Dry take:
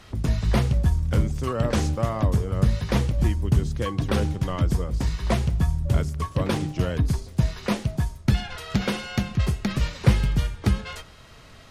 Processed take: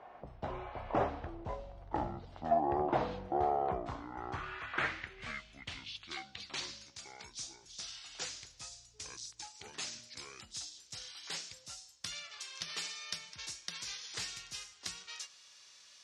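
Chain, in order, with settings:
gliding playback speed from 56% → 90%
band-pass filter sweep 730 Hz → 5,900 Hz, 0:03.29–0:06.97
level +4 dB

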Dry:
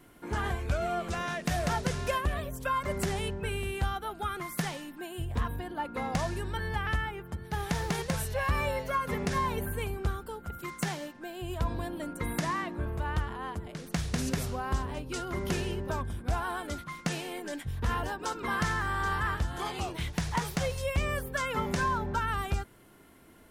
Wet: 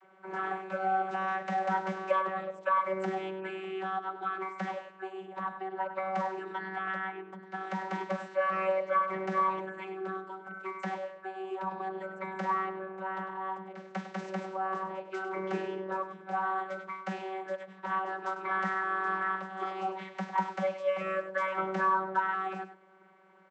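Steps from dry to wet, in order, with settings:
three-way crossover with the lows and the highs turned down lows −19 dB, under 530 Hz, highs −13 dB, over 2,200 Hz
single-tap delay 100 ms −11.5 dB
channel vocoder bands 32, saw 190 Hz
level +4.5 dB

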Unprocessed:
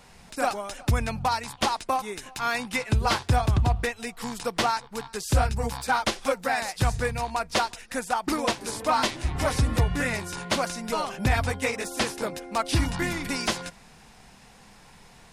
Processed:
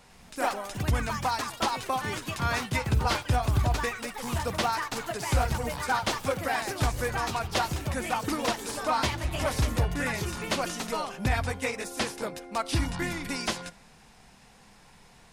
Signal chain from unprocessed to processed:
on a send at −21 dB: convolution reverb RT60 0.85 s, pre-delay 25 ms
on the sum: delay with pitch and tempo change per echo 102 ms, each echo +4 semitones, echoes 3, each echo −6 dB
level −3.5 dB

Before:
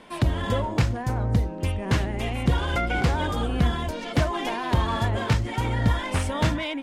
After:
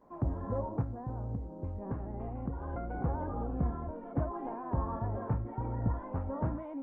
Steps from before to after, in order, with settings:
low-pass filter 1,100 Hz 24 dB per octave
0:00.81–0:03.01: downward compressor 8 to 1, threshold −23 dBFS, peak gain reduction 8.5 dB
tuned comb filter 270 Hz, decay 0.58 s, harmonics all, mix 70%
Opus 24 kbit/s 48,000 Hz

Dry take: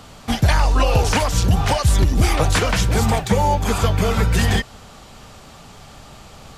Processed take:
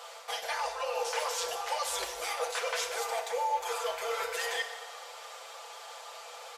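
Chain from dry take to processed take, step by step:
elliptic high-pass filter 460 Hz, stop band 40 dB
comb filter 5.9 ms, depth 53%
reversed playback
downward compressor, threshold −29 dBFS, peak gain reduction 13.5 dB
reversed playback
feedback delay network reverb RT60 1.5 s, low-frequency decay 0.75×, high-frequency decay 0.85×, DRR 5 dB
level −3 dB

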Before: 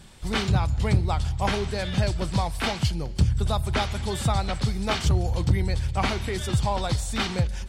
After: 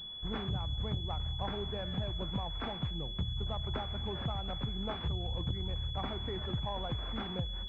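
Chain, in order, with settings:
downward compressor 5 to 1, threshold −24 dBFS, peak gain reduction 9.5 dB
harmonic generator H 2 −15 dB, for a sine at −13.5 dBFS
switching amplifier with a slow clock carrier 3,400 Hz
level −8 dB

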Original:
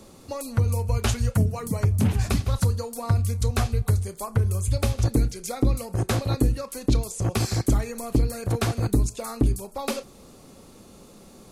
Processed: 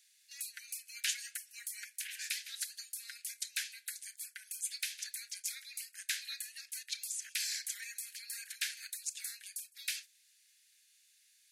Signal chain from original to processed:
noise gate −36 dBFS, range −8 dB
Butterworth high-pass 1,600 Hz 96 dB per octave
level −3 dB

